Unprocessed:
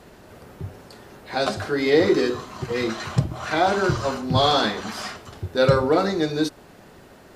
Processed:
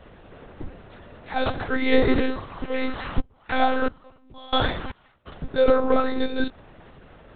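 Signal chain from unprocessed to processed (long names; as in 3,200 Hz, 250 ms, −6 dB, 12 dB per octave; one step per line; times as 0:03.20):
one-pitch LPC vocoder at 8 kHz 260 Hz
0:03.20–0:05.25: gate pattern "...xxx.." 116 BPM −24 dB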